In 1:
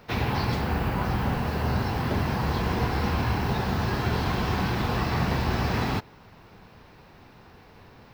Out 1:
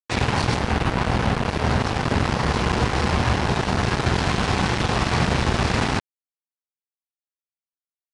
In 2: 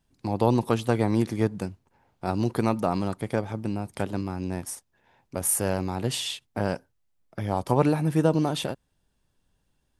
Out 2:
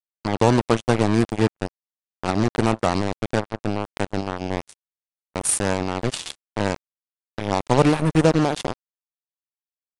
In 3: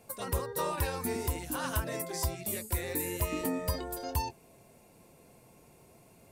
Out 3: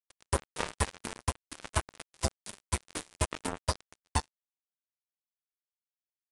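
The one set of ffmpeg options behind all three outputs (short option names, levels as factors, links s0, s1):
-af "acrusher=bits=3:mix=0:aa=0.5,aresample=22050,aresample=44100,volume=1.68"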